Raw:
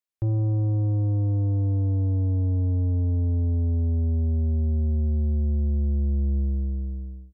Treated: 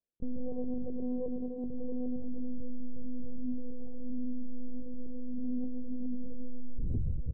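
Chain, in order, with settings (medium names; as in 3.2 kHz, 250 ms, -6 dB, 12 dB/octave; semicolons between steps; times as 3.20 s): feedback delay 284 ms, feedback 25%, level -20 dB; reverse; compression 8:1, threshold -35 dBFS, peak gain reduction 13 dB; reverse; steep low-pass 650 Hz 48 dB/octave; hum notches 50/100/150/200/250/300/350/400/450 Hz; spring tank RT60 1.5 s, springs 33/45/50 ms, chirp 65 ms, DRR 3 dB; monotone LPC vocoder at 8 kHz 250 Hz; peak limiter -34 dBFS, peak gain reduction 10 dB; loudspeaker Doppler distortion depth 0.38 ms; trim +9 dB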